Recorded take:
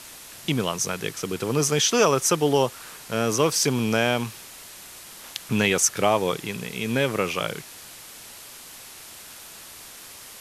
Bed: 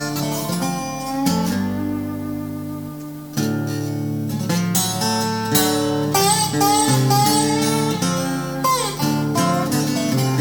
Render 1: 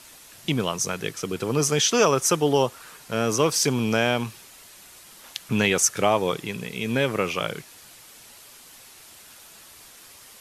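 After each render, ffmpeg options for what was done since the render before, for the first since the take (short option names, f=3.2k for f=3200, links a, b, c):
-af "afftdn=nr=6:nf=-43"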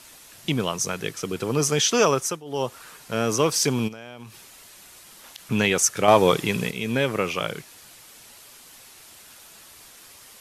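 -filter_complex "[0:a]asplit=3[a][b][c];[a]afade=t=out:st=3.87:d=0.02[d];[b]acompressor=threshold=-39dB:ratio=4:attack=3.2:release=140:knee=1:detection=peak,afade=t=in:st=3.87:d=0.02,afade=t=out:st=5.37:d=0.02[e];[c]afade=t=in:st=5.37:d=0.02[f];[d][e][f]amix=inputs=3:normalize=0,asettb=1/sr,asplit=3[g][h][i];[g]atrim=end=6.084[j];[h]atrim=start=6.08:end=6.71,asetpts=PTS-STARTPTS,afade=t=in:d=0.004:c=qsin,afade=t=out:st=0.626:d=0.004:c=qsin,acontrast=84[k];[i]atrim=start=6.706[l];[j][k]acrossfade=d=0.004:c1=hsin:c2=qsin[m];[m][l]acrossfade=d=0.004:c1=qsin:c2=hsin,asplit=3[n][o][p];[n]atrim=end=2.43,asetpts=PTS-STARTPTS,afade=t=out:st=2.12:d=0.31:silence=0.0891251[q];[o]atrim=start=2.43:end=2.45,asetpts=PTS-STARTPTS,volume=-21dB[r];[p]atrim=start=2.45,asetpts=PTS-STARTPTS,afade=t=in:d=0.31:silence=0.0891251[s];[q][r][s]concat=n=3:v=0:a=1"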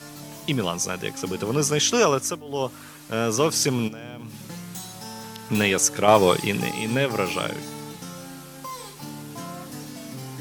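-filter_complex "[1:a]volume=-18dB[a];[0:a][a]amix=inputs=2:normalize=0"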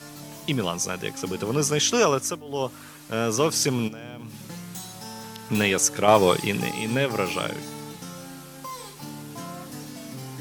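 -af "volume=-1dB"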